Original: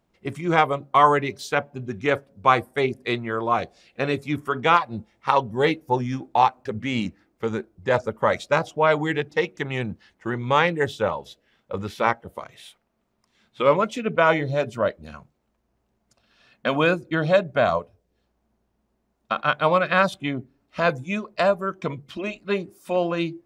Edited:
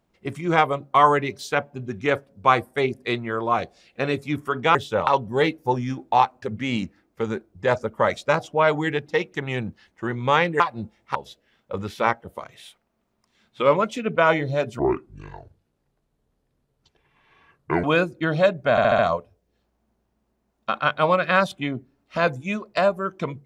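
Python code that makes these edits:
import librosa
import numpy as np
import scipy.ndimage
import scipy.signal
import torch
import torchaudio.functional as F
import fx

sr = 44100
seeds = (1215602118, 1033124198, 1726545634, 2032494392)

y = fx.edit(x, sr, fx.swap(start_s=4.75, length_s=0.55, other_s=10.83, other_length_s=0.32),
    fx.speed_span(start_s=14.79, length_s=1.95, speed=0.64),
    fx.stutter(start_s=17.61, slice_s=0.07, count=5), tone=tone)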